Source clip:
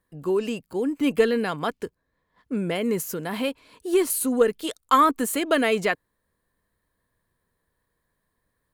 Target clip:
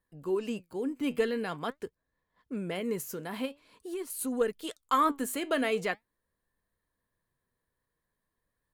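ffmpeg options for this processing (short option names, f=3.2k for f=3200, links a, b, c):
-filter_complex "[0:a]asettb=1/sr,asplit=3[a][b][c];[a]atrim=end=3.454[d];[b]atrim=start=3.45:end=4.19,asetpts=PTS-STARTPTS,afade=t=in:d=0.004:c=qsin,afade=t=out:st=0.736:d=0.004:c=qsin,acompressor=threshold=-30dB:ratio=2.5[e];[c]atrim=start=4.186[f];[d][e]acrossfade=d=0.004:c1=hsin:c2=qsin[g];[g][f]acrossfade=d=0.004:c1=qsin:c2=hsin,flanger=delay=1.1:depth=7.1:regen=79:speed=0.46:shape=sinusoidal,volume=-3.5dB"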